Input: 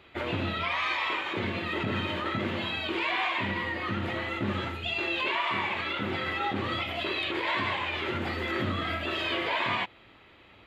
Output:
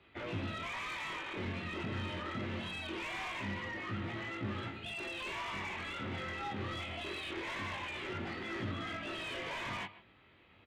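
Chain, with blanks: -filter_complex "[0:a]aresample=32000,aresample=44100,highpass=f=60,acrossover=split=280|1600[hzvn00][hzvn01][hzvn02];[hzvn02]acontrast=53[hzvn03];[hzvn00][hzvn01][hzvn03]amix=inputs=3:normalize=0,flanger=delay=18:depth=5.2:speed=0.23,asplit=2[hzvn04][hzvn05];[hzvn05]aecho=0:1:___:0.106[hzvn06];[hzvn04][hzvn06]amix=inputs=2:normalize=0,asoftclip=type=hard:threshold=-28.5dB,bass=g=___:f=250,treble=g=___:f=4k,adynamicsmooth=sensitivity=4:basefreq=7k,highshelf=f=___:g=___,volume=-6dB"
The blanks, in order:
148, 5, 2, 2.7k, -9.5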